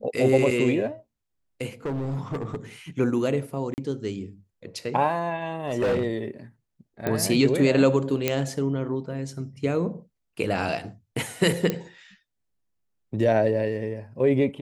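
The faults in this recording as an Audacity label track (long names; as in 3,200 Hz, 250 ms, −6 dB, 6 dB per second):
1.850000	2.560000	clipping −25.5 dBFS
3.740000	3.780000	drop-out 39 ms
5.670000	6.060000	clipping −19.5 dBFS
7.070000	7.070000	click −13 dBFS
8.280000	8.280000	click −7 dBFS
11.700000	11.700000	click −11 dBFS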